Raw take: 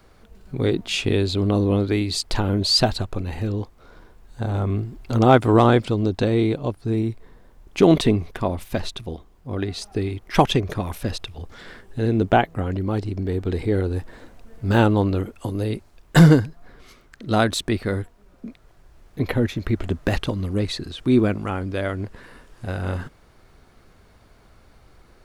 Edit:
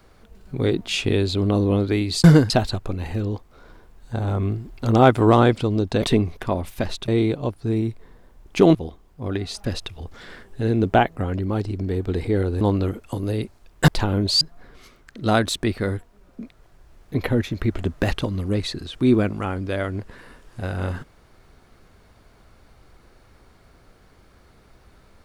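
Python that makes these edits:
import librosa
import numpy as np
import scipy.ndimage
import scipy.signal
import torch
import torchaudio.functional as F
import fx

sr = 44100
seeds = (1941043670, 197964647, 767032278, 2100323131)

y = fx.edit(x, sr, fx.swap(start_s=2.24, length_s=0.53, other_s=16.2, other_length_s=0.26),
    fx.move(start_s=7.96, length_s=1.06, to_s=6.29),
    fx.cut(start_s=9.91, length_s=1.11),
    fx.cut(start_s=13.99, length_s=0.94), tone=tone)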